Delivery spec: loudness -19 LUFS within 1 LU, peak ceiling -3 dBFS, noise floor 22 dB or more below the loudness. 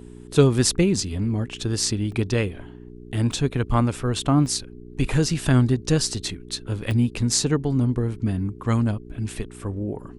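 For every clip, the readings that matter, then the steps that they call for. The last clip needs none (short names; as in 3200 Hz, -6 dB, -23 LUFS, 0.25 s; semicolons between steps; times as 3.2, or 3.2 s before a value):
dropouts 5; longest dropout 2.0 ms; hum 60 Hz; harmonics up to 420 Hz; hum level -42 dBFS; loudness -23.0 LUFS; peak -2.5 dBFS; loudness target -19.0 LUFS
-> interpolate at 2.12/3.32/4.46/5.29/6.91, 2 ms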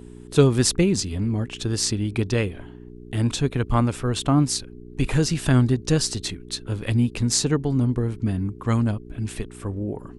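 dropouts 0; hum 60 Hz; harmonics up to 420 Hz; hum level -42 dBFS
-> de-hum 60 Hz, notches 7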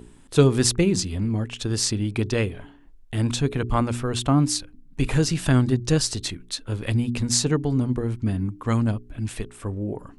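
hum none; loudness -24.0 LUFS; peak -3.0 dBFS; loudness target -19.0 LUFS
-> gain +5 dB; limiter -3 dBFS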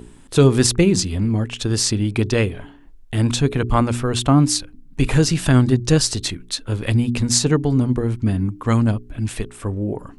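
loudness -19.0 LUFS; peak -3.0 dBFS; noise floor -44 dBFS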